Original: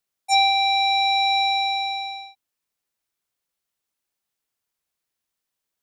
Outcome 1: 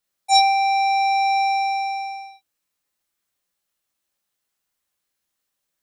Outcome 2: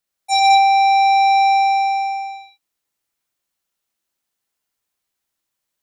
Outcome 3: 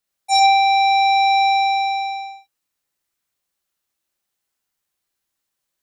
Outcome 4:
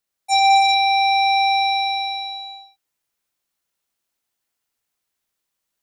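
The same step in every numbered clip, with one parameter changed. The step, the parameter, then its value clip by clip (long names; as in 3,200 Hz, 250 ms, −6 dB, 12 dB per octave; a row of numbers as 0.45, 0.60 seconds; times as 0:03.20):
reverb whose tail is shaped and stops, gate: 80, 250, 140, 430 milliseconds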